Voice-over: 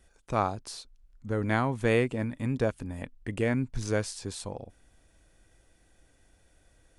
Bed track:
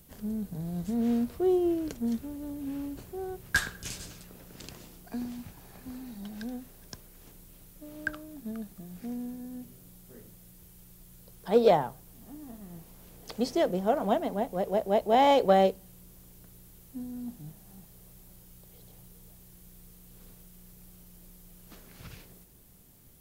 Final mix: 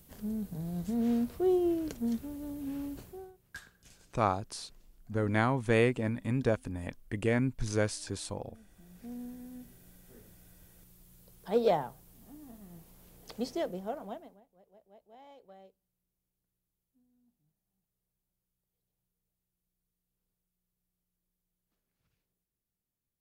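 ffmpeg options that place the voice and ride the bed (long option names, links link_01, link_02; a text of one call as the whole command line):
ffmpeg -i stem1.wav -i stem2.wav -filter_complex "[0:a]adelay=3850,volume=-1dB[link_01];[1:a]volume=13dB,afade=type=out:start_time=2.98:duration=0.35:silence=0.11885,afade=type=in:start_time=8.67:duration=0.53:silence=0.177828,afade=type=out:start_time=13.38:duration=1.03:silence=0.0398107[link_02];[link_01][link_02]amix=inputs=2:normalize=0" out.wav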